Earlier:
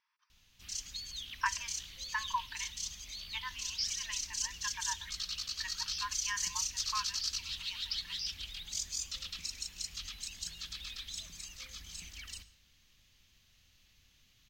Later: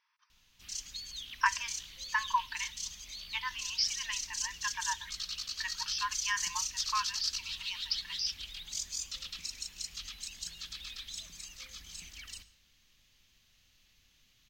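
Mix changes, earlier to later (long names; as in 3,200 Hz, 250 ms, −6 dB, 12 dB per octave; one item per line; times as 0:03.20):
speech +5.0 dB
master: add parametric band 80 Hz −4.5 dB 1.9 octaves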